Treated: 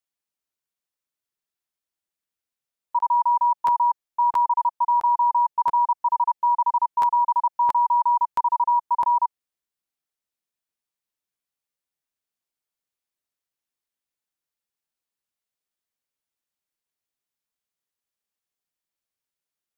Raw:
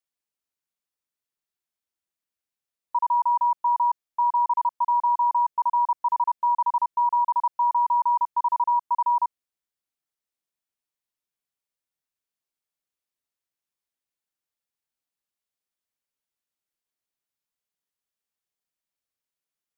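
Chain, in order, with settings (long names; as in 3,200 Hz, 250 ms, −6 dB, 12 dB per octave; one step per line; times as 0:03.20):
dynamic equaliser 890 Hz, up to +3 dB, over −31 dBFS, Q 4.6
regular buffer underruns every 0.67 s, samples 512, repeat, from 0:00.98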